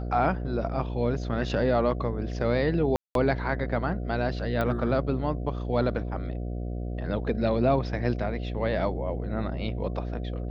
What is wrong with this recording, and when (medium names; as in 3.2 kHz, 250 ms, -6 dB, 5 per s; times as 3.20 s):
buzz 60 Hz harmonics 12 -32 dBFS
2.96–3.15 s: dropout 192 ms
4.61 s: pop -16 dBFS